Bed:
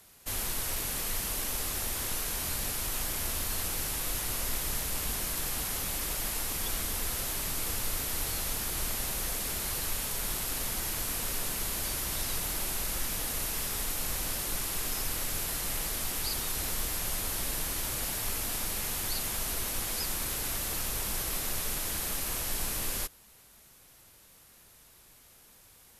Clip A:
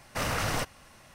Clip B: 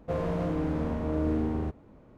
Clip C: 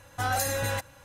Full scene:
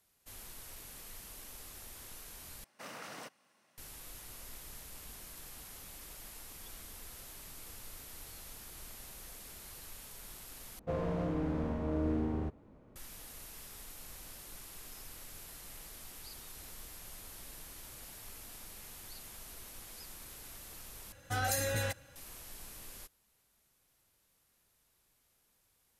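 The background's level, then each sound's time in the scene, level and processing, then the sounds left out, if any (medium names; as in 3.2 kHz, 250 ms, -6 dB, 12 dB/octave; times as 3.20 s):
bed -16.5 dB
2.64 s: replace with A -16 dB + high-pass 180 Hz 24 dB/octave
10.79 s: replace with B -5 dB
21.12 s: replace with C -4 dB + peaking EQ 970 Hz -11 dB 0.45 oct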